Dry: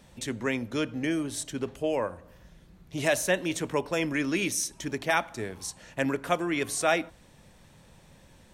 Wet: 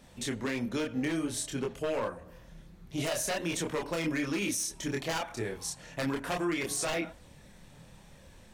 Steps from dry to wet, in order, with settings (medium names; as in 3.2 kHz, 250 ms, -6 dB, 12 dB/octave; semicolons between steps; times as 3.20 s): wavefolder -21.5 dBFS; chorus voices 4, 0.53 Hz, delay 27 ms, depth 3.5 ms; peak limiter -27 dBFS, peak gain reduction 7.5 dB; trim +3.5 dB